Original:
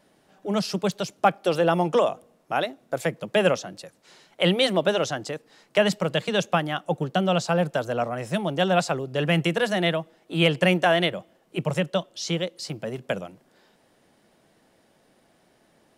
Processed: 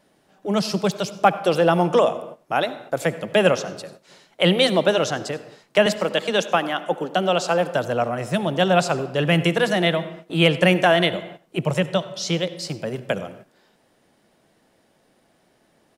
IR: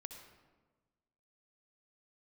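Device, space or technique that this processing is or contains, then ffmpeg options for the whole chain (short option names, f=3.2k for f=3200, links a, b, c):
keyed gated reverb: -filter_complex "[0:a]asettb=1/sr,asplit=3[a][b][c];[a]atrim=end=5.864[d];[b]atrim=start=5.86:end=7.73,asetpts=PTS-STARTPTS,afade=t=in:d=0.004:c=qsin,afade=t=out:st=1.866:d=0.004:c=qsin,highpass=f=220:w=0.5412,highpass=f=220:w=1.3066[e];[c]atrim=start=7.726[f];[d][e]acrossfade=d=0.004:c1=hsin:c2=qsin[g];[g][f]acrossfade=d=0.004:c1=qsin:c2=hsin,asplit=3[h][i][j];[1:a]atrim=start_sample=2205[k];[i][k]afir=irnorm=-1:irlink=0[l];[j]apad=whole_len=704533[m];[l][m]sidechaingate=range=-33dB:threshold=-51dB:ratio=16:detection=peak,volume=-0.5dB[n];[h][n]amix=inputs=2:normalize=0,asplit=2[o][p];[p]adelay=93.29,volume=-21dB,highshelf=f=4k:g=-2.1[q];[o][q]amix=inputs=2:normalize=0"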